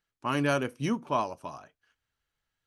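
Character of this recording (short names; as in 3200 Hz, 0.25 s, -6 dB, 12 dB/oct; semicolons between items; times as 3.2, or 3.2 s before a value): noise floor -89 dBFS; spectral tilt -5.0 dB/oct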